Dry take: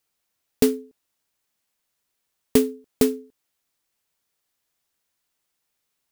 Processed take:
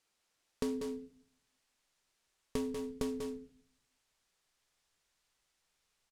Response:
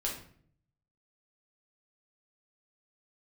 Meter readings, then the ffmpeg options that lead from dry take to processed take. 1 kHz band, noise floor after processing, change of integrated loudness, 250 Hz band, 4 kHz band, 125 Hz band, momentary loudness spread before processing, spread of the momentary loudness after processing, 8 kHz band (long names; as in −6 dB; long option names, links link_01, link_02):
−8.0 dB, −81 dBFS, −16.5 dB, −14.0 dB, −14.5 dB, −12.5 dB, 11 LU, 10 LU, −17.5 dB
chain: -filter_complex "[0:a]lowpass=8200,asplit=2[link_01][link_02];[1:a]atrim=start_sample=2205[link_03];[link_02][link_03]afir=irnorm=-1:irlink=0,volume=-21dB[link_04];[link_01][link_04]amix=inputs=2:normalize=0,alimiter=limit=-13dB:level=0:latency=1:release=85,asoftclip=type=tanh:threshold=-19.5dB,equalizer=frequency=80:width_type=o:width=1.4:gain=-7,aecho=1:1:191:0.398,acompressor=threshold=-34dB:ratio=3,asubboost=boost=3.5:cutoff=110"